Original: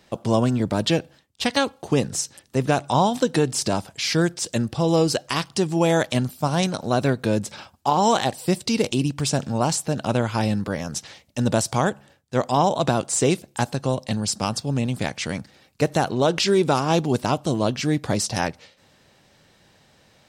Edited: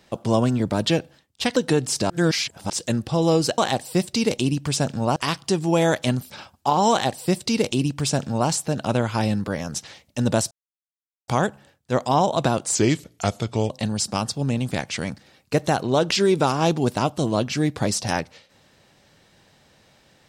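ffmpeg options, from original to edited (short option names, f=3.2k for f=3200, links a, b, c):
-filter_complex "[0:a]asplit=10[a][b][c][d][e][f][g][h][i][j];[a]atrim=end=1.562[k];[b]atrim=start=3.218:end=3.762[l];[c]atrim=start=3.758:end=4.362,asetpts=PTS-STARTPTS,areverse[m];[d]atrim=start=4.358:end=5.242[n];[e]atrim=start=8.108:end=9.692[o];[f]atrim=start=5.238:end=6.382[p];[g]atrim=start=7.498:end=11.71,asetpts=PTS-STARTPTS,afade=t=out:st=4.208:d=0.004:c=hsin,apad=pad_dur=0.77[q];[h]atrim=start=11.71:end=13.184,asetpts=PTS-STARTPTS,afade=t=in:d=0.004:c=hsin[r];[i]atrim=start=13.18:end=13.98,asetpts=PTS-STARTPTS,asetrate=37044,aresample=44100[s];[j]atrim=start=13.976[t];[k][l]acrossfade=d=0.004:c1=hsin:c2=hsin[u];[u][m]acrossfade=d=0.004:c1=hsin:c2=hsin[v];[v][n]acrossfade=d=0.004:c1=hsin:c2=hsin[w];[w][o]acrossfade=d=0.004:c1=hsin:c2=hsin[x];[x][p]acrossfade=d=0.004:c1=hsin:c2=hsin[y];[q][r]concat=n=2:v=0:a=1[z];[y][z]acrossfade=d=0.004:c1=hsin:c2=hsin[aa];[aa][s]acrossfade=d=0.004:c1=hsin:c2=hsin[ab];[ab][t]acrossfade=d=0.004:c1=hsin:c2=hsin"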